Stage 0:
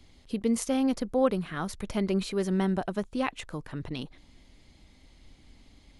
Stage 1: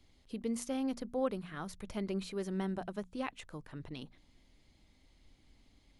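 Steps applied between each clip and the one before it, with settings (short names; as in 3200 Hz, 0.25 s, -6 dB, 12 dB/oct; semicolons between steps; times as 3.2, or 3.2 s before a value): notches 60/120/180/240 Hz; gain -9 dB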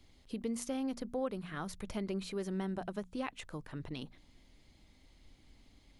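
compressor 2:1, threshold -39 dBFS, peak gain reduction 6.5 dB; gain +3 dB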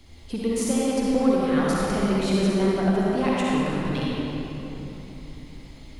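in parallel at -8 dB: hard clip -38.5 dBFS, distortion -8 dB; on the sum: reverb RT60 3.6 s, pre-delay 46 ms, DRR -6 dB; gain +7.5 dB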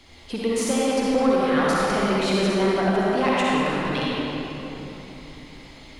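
overdrive pedal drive 13 dB, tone 4000 Hz, clips at -9 dBFS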